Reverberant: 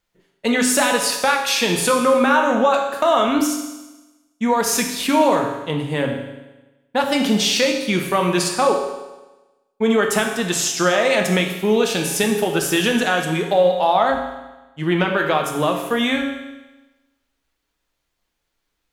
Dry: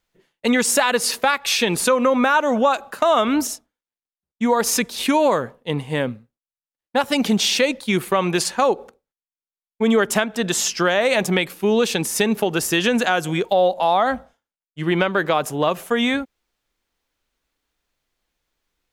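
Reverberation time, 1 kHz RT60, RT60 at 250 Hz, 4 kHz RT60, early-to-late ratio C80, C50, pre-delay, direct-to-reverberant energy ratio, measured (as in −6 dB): 1.1 s, 1.1 s, 1.1 s, 1.1 s, 7.0 dB, 5.0 dB, 7 ms, 2.0 dB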